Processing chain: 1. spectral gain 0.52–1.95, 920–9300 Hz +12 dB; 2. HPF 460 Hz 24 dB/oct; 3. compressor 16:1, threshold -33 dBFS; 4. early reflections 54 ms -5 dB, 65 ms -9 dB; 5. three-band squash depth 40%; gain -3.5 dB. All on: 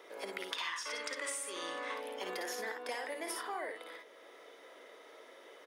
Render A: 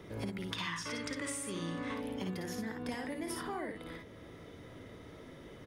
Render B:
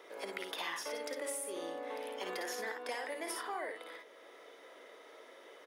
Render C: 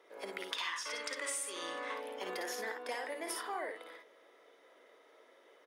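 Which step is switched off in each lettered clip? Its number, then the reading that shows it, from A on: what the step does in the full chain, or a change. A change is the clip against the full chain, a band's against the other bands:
2, 250 Hz band +14.5 dB; 1, 500 Hz band +3.0 dB; 5, momentary loudness spread change -10 LU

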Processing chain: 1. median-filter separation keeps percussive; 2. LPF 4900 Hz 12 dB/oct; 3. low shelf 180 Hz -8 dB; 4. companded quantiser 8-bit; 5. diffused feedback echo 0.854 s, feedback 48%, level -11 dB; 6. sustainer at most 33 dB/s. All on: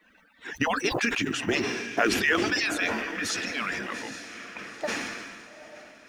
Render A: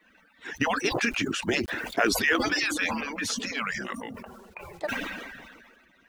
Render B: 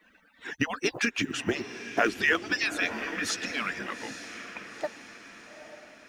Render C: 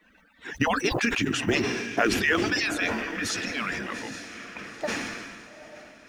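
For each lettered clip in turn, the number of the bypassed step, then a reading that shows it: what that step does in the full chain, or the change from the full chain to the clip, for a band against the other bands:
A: 5, momentary loudness spread change +2 LU; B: 6, crest factor change +2.0 dB; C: 3, 125 Hz band +4.5 dB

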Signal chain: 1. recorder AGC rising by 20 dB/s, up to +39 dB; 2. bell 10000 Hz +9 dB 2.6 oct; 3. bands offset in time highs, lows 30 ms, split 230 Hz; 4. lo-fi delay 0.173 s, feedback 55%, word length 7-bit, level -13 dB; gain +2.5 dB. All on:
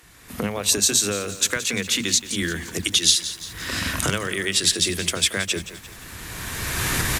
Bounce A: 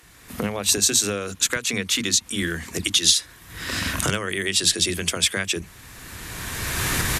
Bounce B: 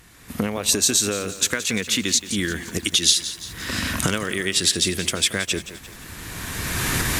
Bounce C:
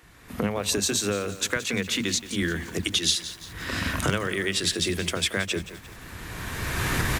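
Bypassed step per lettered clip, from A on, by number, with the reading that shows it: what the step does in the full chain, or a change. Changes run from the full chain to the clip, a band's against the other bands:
4, momentary loudness spread change +2 LU; 3, 250 Hz band +2.5 dB; 2, 8 kHz band -7.5 dB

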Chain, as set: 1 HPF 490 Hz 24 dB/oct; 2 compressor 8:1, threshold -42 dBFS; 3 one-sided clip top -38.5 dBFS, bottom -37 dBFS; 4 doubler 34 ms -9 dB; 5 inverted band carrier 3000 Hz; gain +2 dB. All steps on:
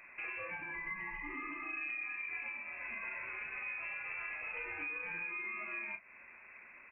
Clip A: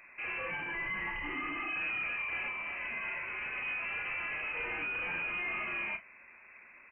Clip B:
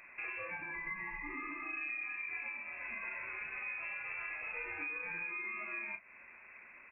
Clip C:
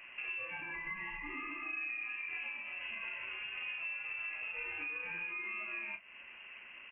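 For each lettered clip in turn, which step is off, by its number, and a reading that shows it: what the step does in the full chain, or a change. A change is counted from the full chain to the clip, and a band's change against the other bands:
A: 2, mean gain reduction 9.5 dB; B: 3, distortion -24 dB; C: 1, 2 kHz band +2.5 dB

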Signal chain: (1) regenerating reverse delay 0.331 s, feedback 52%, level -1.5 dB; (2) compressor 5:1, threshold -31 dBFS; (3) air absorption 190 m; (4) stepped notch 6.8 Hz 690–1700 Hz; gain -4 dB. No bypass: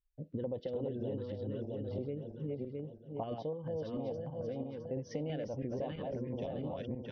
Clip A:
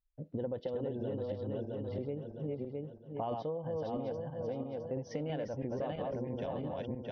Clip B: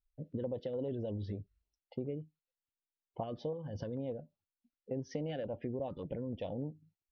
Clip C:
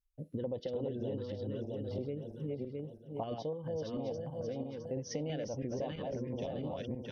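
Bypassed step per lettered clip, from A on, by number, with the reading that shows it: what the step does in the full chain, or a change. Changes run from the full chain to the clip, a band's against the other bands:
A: 4, 1 kHz band +4.5 dB; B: 1, crest factor change +2.5 dB; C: 3, 4 kHz band +4.5 dB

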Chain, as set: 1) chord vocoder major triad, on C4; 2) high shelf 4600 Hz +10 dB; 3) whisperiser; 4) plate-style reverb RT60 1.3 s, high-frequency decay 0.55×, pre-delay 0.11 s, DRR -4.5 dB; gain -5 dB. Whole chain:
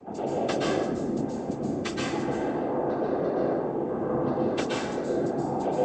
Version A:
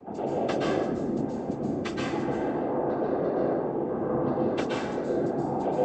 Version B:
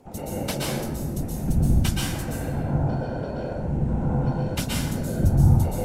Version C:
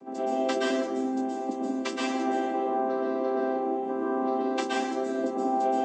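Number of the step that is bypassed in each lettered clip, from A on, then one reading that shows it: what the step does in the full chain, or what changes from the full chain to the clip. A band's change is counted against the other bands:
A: 2, 4 kHz band -3.5 dB; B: 1, 125 Hz band +15.0 dB; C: 3, 1 kHz band +4.5 dB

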